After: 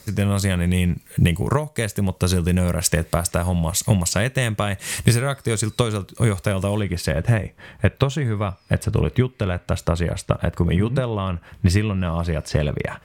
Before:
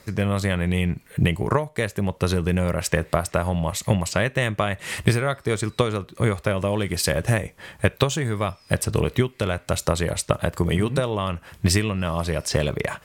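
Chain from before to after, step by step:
bass and treble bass +5 dB, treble +10 dB, from 0:06.79 treble −7 dB
level −1 dB

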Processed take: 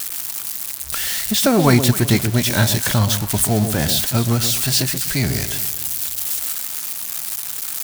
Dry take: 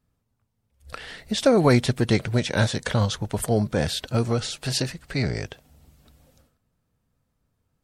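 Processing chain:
spike at every zero crossing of −18.5 dBFS
parametric band 490 Hz −10 dB 0.38 octaves
on a send: delay that swaps between a low-pass and a high-pass 128 ms, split 880 Hz, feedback 53%, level −8 dB
on the sum: level +5 dB

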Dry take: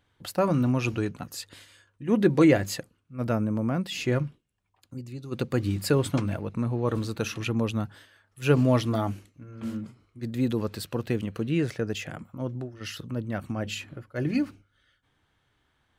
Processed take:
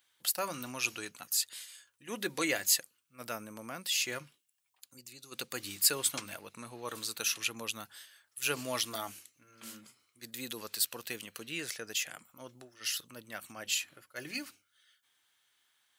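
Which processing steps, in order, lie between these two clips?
first difference
level +9 dB

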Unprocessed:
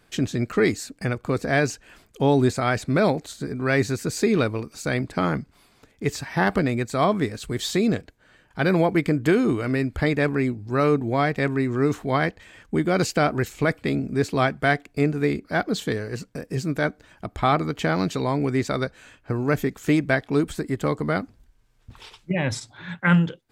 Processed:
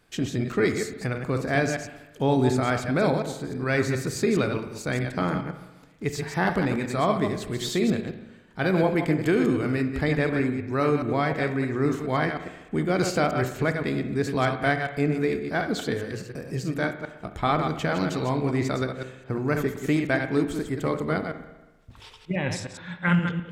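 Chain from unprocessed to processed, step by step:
delay that plays each chunk backwards 104 ms, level −6 dB
on a send: convolution reverb RT60 1.1 s, pre-delay 39 ms, DRR 9.5 dB
on the sum: level −3.5 dB

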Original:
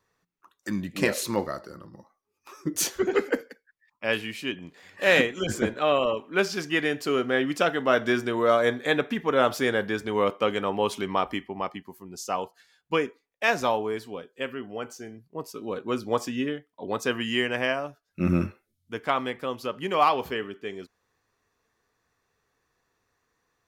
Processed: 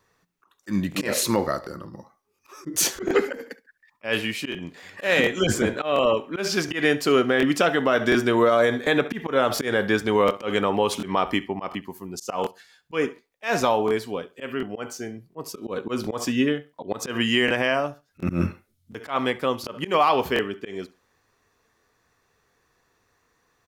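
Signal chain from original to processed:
repeating echo 69 ms, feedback 22%, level −20.5 dB
brickwall limiter −16.5 dBFS, peak gain reduction 8.5 dB
volume swells 118 ms
0:10.28–0:11.01: surface crackle 35 per second −55 dBFS
regular buffer underruns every 0.72 s, samples 1,024, repeat, from 0:00.90
level +7 dB

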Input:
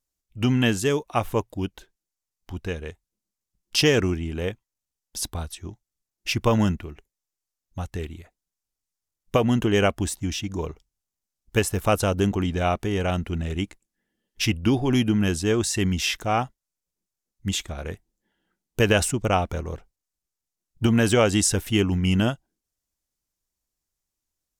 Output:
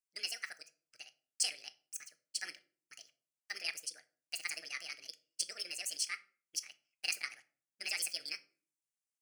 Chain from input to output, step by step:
pitch shift by two crossfaded delay taps −8.5 semitones
high-pass filter 980 Hz 12 dB per octave
phaser with its sweep stopped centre 1,400 Hz, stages 6
change of speed 2.67×
convolution reverb RT60 0.45 s, pre-delay 6 ms, DRR 11.5 dB
level −3 dB

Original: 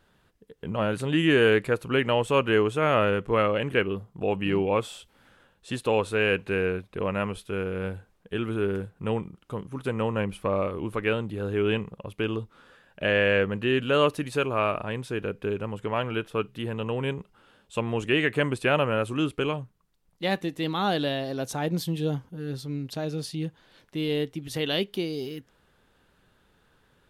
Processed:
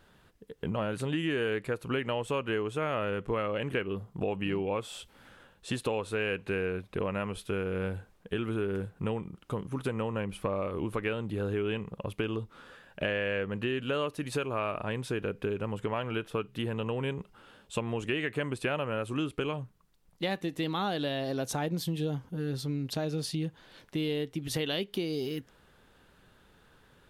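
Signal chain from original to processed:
downward compressor 5 to 1, threshold −32 dBFS, peak gain reduction 14.5 dB
level +3 dB

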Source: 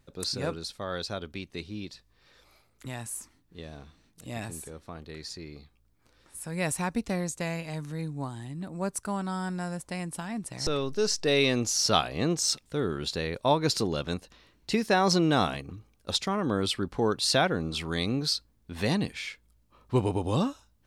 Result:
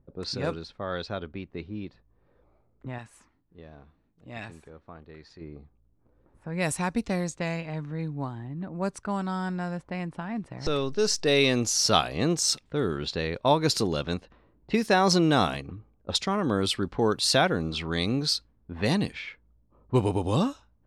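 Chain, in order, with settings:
low-pass that shuts in the quiet parts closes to 620 Hz, open at −24 dBFS
0:02.98–0:05.41: tilt shelving filter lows −7 dB, about 1,500 Hz
level +2 dB

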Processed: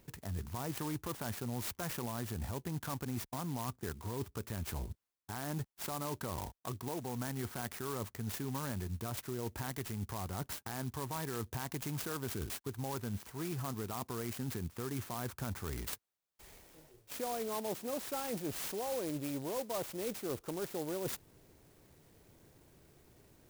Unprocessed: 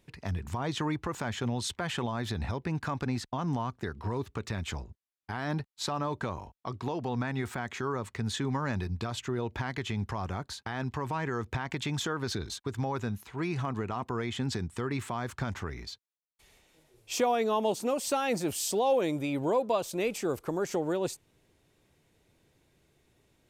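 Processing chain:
reversed playback
downward compressor 5 to 1, threshold −43 dBFS, peak gain reduction 18.5 dB
reversed playback
converter with an unsteady clock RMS 0.096 ms
level +5.5 dB

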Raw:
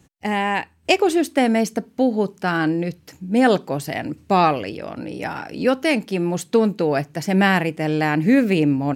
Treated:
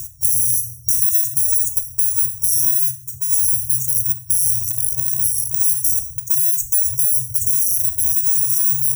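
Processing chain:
samples in bit-reversed order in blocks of 64 samples
reverb reduction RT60 0.61 s
brick-wall band-stop 130–5,600 Hz
0:05.99–0:08.13: three-band delay without the direct sound lows, highs, mids 190/370 ms, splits 230/2,500 Hz
rectangular room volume 170 cubic metres, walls mixed, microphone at 0.43 metres
boost into a limiter +17.5 dB
multiband upward and downward compressor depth 70%
level −6 dB

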